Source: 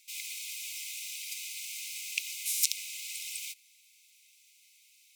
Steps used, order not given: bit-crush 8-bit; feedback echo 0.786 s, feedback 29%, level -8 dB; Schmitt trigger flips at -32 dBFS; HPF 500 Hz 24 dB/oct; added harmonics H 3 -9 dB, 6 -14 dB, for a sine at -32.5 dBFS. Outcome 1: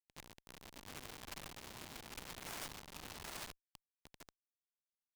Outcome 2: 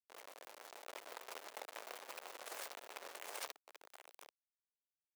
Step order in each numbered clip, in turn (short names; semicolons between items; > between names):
bit-crush > feedback echo > Schmitt trigger > HPF > added harmonics; Schmitt trigger > feedback echo > added harmonics > bit-crush > HPF